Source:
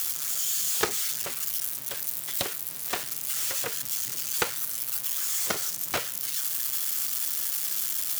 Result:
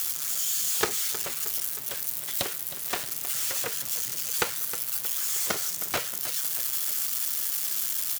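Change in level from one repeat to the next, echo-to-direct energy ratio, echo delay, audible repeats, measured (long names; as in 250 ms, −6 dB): −4.5 dB, −12.5 dB, 314 ms, 3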